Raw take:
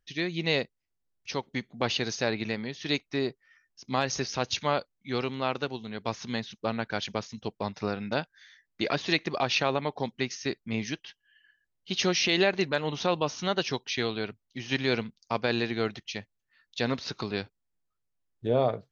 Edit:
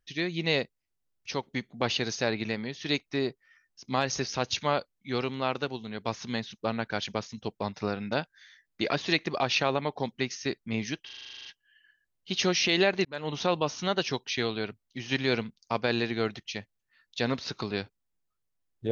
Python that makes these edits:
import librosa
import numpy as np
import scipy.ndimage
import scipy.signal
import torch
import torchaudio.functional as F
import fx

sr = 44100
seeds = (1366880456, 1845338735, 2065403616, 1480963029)

y = fx.edit(x, sr, fx.stutter(start_s=11.05, slice_s=0.04, count=11),
    fx.fade_in_span(start_s=12.65, length_s=0.29), tone=tone)